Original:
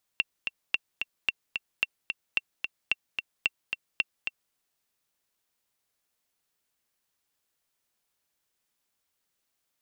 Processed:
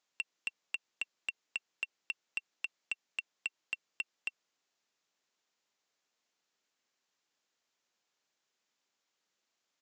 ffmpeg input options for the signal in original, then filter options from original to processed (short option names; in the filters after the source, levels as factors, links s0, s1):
-f lavfi -i "aevalsrc='pow(10,(-10.5-6*gte(mod(t,2*60/221),60/221))/20)*sin(2*PI*2720*mod(t,60/221))*exp(-6.91*mod(t,60/221)/0.03)':d=4.34:s=44100"
-af "highpass=210,alimiter=limit=0.168:level=0:latency=1:release=91,aresample=16000,asoftclip=type=tanh:threshold=0.0562,aresample=44100"